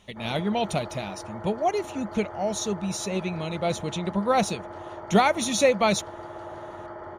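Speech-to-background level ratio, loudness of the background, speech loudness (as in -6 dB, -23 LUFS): 14.0 dB, -40.0 LUFS, -26.0 LUFS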